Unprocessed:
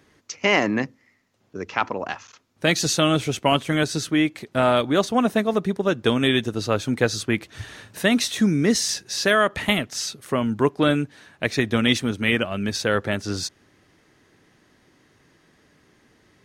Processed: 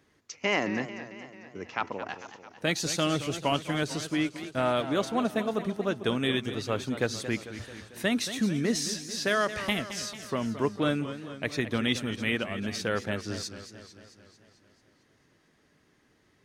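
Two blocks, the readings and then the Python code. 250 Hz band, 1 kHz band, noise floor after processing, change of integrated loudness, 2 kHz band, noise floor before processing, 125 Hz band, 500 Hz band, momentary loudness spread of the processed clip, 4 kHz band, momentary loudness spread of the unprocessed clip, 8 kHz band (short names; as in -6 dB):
-7.5 dB, -7.5 dB, -66 dBFS, -7.5 dB, -7.5 dB, -62 dBFS, -7.5 dB, -7.5 dB, 13 LU, -7.5 dB, 9 LU, -7.5 dB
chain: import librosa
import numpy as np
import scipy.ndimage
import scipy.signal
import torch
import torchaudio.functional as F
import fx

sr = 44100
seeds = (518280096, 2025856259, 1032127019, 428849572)

y = fx.echo_warbled(x, sr, ms=222, feedback_pct=61, rate_hz=2.8, cents=144, wet_db=-12.0)
y = y * librosa.db_to_amplitude(-8.0)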